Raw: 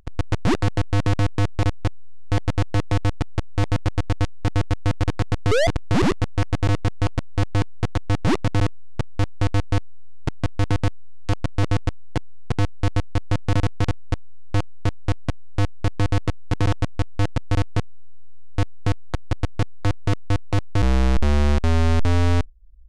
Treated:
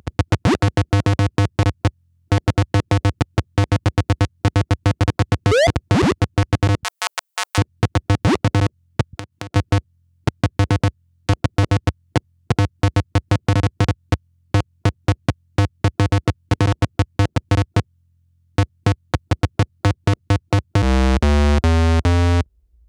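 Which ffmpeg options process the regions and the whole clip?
ffmpeg -i in.wav -filter_complex "[0:a]asettb=1/sr,asplit=3[link_01][link_02][link_03];[link_01]atrim=end=6.834[link_04];[link_02]atrim=start=6.83:end=7.58,asetpts=PTS-STARTPTS,afade=type=in:duration=0.004:curve=qsin,afade=type=out:start_time=0.746:duration=0.004:curve=qsin,highpass=frequency=830:width=0.5412,highpass=frequency=830:width=1.3066,aemphasis=mode=production:type=50kf[link_05];[link_03]atrim=start=7.576[link_06];[link_04][link_05]acrossfade=duration=0.004:curve1=hsin:curve2=qsin[link_07];[link_07][link_06]acrossfade=duration=0.004:curve1=qsin:curve2=hsin,asettb=1/sr,asplit=3[link_08][link_09][link_10];[link_08]atrim=end=9.134[link_11];[link_09]atrim=start=9.13:end=9.56,asetpts=PTS-STARTPTS,afade=type=in:duration=0.004:curve=qsin,afade=type=out:start_time=0.426:duration=0.004:curve=qsin,highpass=120,acompressor=threshold=-35dB:ratio=10:attack=3.2:release=140:knee=1:detection=peak[link_12];[link_10]atrim=start=9.556[link_13];[link_11][link_12]acrossfade=duration=0.004:curve1=hsin:curve2=qsin[link_14];[link_14][link_13]acrossfade=duration=0.004:curve1=qsin:curve2=hsin,highpass=frequency=68:width=0.5412,highpass=frequency=68:width=1.3066,acompressor=threshold=-20dB:ratio=6,volume=8.5dB" out.wav

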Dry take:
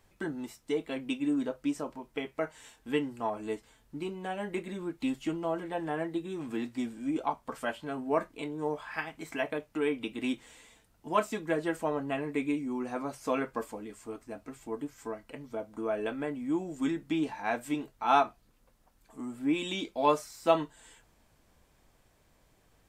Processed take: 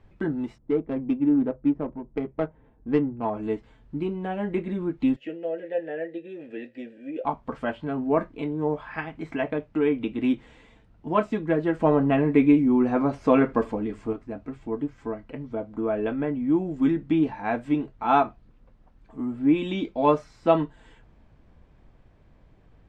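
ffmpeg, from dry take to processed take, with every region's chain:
ffmpeg -i in.wav -filter_complex "[0:a]asettb=1/sr,asplit=3[link_01][link_02][link_03];[link_01]atrim=end=0.584[link_04];[link_02]atrim=start=0.58:end=3.25,asetpts=PTS-STARTPTS,afade=type=in:duration=0.004:curve=qsin,afade=type=out:start_time=2.666:duration=0.004:curve=qsin,equalizer=frequency=3000:width_type=o:width=0.34:gain=5,bandreject=frequency=2900:width=9.6,adynamicsmooth=sensitivity=2.5:basefreq=650[link_05];[link_03]atrim=start=3.246[link_06];[link_04][link_05]acrossfade=duration=0.004:curve1=hsin:curve2=qsin[link_07];[link_07][link_06]acrossfade=duration=0.004:curve1=qsin:curve2=hsin,asettb=1/sr,asplit=3[link_08][link_09][link_10];[link_08]atrim=end=5.164[link_11];[link_09]atrim=start=5.16:end=7.25,asetpts=PTS-STARTPTS,afade=type=in:duration=0.004:curve=qsin,afade=type=out:start_time=2.086:duration=0.004:curve=qsin,asplit=3[link_12][link_13][link_14];[link_12]bandpass=frequency=530:width_type=q:width=8,volume=0dB[link_15];[link_13]bandpass=frequency=1840:width_type=q:width=8,volume=-6dB[link_16];[link_14]bandpass=frequency=2480:width_type=q:width=8,volume=-9dB[link_17];[link_15][link_16][link_17]amix=inputs=3:normalize=0,aemphasis=mode=production:type=75kf,acontrast=61[link_18];[link_10]atrim=start=7.246[link_19];[link_11][link_18]acrossfade=duration=0.004:curve1=hsin:curve2=qsin[link_20];[link_20][link_19]acrossfade=duration=0.004:curve1=qsin:curve2=hsin,asettb=1/sr,asplit=3[link_21][link_22][link_23];[link_21]atrim=end=11.804[link_24];[link_22]atrim=start=11.8:end=14.13,asetpts=PTS-STARTPTS,afade=type=in:duration=0.004:curve=qsin,afade=type=out:start_time=2.326:duration=0.004:curve=qsin,acontrast=28,aecho=1:1:77:0.0668,atrim=end_sample=102753[link_25];[link_23]atrim=start=14.126[link_26];[link_24][link_25]acrossfade=duration=0.004:curve1=hsin:curve2=qsin[link_27];[link_27][link_26]acrossfade=duration=0.004:curve1=qsin:curve2=hsin,lowpass=2900,lowshelf=frequency=370:gain=11,volume=2dB" out.wav

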